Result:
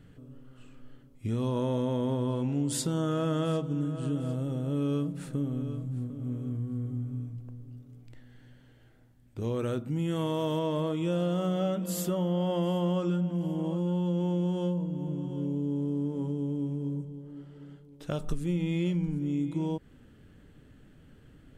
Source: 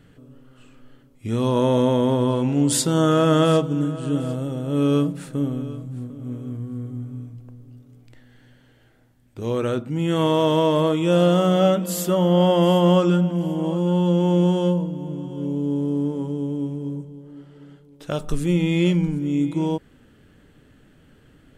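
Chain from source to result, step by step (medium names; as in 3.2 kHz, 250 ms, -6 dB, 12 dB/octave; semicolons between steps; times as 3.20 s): bass shelf 240 Hz +6.5 dB; compression 2.5:1, threshold -23 dBFS, peak gain reduction 10 dB; 9.59–10.59 s: treble shelf 10 kHz +10.5 dB; trim -6 dB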